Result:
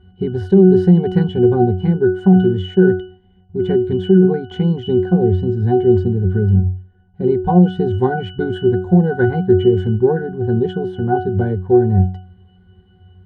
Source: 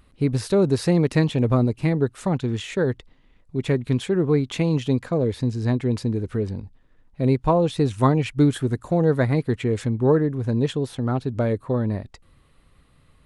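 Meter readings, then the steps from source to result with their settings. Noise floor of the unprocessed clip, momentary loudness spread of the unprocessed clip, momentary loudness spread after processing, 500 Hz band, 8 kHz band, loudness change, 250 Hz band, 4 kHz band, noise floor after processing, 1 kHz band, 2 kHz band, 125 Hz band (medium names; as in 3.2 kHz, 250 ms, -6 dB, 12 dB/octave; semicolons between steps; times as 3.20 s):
-58 dBFS, 6 LU, 9 LU, +8.0 dB, under -20 dB, +7.0 dB, +7.5 dB, +1.0 dB, -51 dBFS, +6.0 dB, +4.5 dB, +6.0 dB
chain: vibrato 2.8 Hz 44 cents; pitch-class resonator F#, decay 0.41 s; loudness maximiser +27 dB; trim -1 dB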